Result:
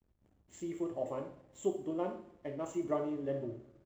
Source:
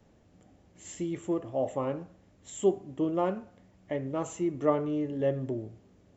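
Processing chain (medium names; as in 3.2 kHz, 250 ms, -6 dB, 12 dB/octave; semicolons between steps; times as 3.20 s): tempo 1.6×; two-slope reverb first 0.58 s, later 1.9 s, DRR 2.5 dB; hysteresis with a dead band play -51.5 dBFS; trim -8.5 dB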